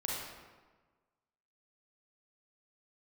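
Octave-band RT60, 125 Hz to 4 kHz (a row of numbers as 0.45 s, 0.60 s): 1.5 s, 1.4 s, 1.4 s, 1.3 s, 1.1 s, 0.85 s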